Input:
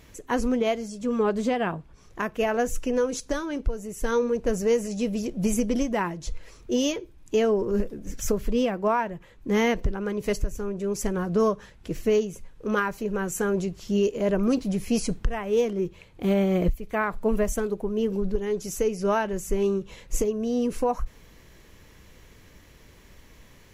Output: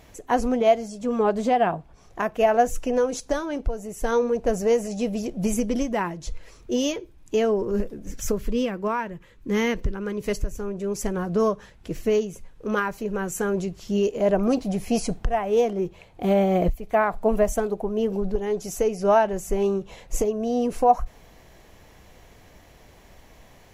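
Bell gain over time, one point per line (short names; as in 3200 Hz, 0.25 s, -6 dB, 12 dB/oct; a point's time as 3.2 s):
bell 720 Hz 0.56 oct
5.04 s +10.5 dB
5.7 s +2.5 dB
8.14 s +2.5 dB
8.68 s -7 dB
9.93 s -7 dB
10.57 s +3 dB
13.84 s +3 dB
14.4 s +12.5 dB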